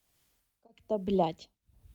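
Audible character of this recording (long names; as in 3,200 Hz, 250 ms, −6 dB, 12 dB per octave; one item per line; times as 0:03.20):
phaser sweep stages 2, 3.5 Hz, lowest notch 720–2,000 Hz
a quantiser's noise floor 12 bits, dither triangular
tremolo triangle 1.1 Hz, depth 100%
Opus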